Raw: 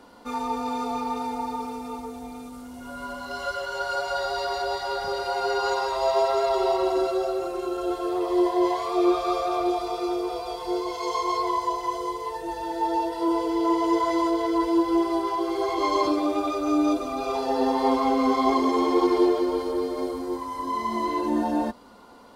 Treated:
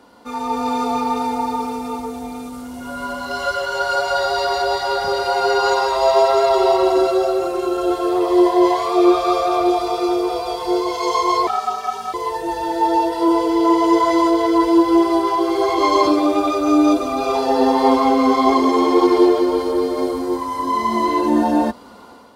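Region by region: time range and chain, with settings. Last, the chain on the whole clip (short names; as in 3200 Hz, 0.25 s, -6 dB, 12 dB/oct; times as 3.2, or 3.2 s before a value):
11.47–12.14 HPF 720 Hz 24 dB/oct + ring modulator 270 Hz
whole clip: AGC gain up to 7 dB; HPF 50 Hz; gain +1.5 dB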